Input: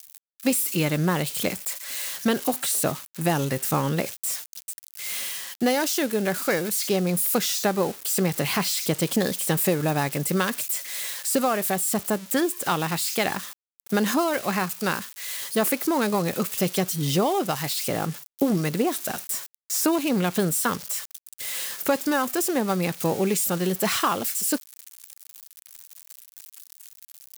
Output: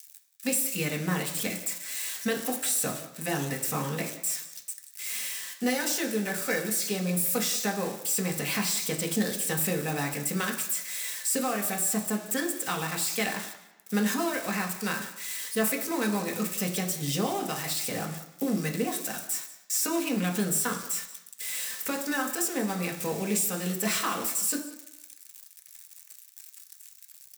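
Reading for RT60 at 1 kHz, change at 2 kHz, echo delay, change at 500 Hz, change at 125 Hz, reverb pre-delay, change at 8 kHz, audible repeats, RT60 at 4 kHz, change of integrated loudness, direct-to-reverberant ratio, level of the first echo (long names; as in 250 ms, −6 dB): 0.95 s, −2.5 dB, 181 ms, −7.0 dB, −6.0 dB, 3 ms, −1.0 dB, 1, 0.90 s, −4.0 dB, 1.0 dB, −17.0 dB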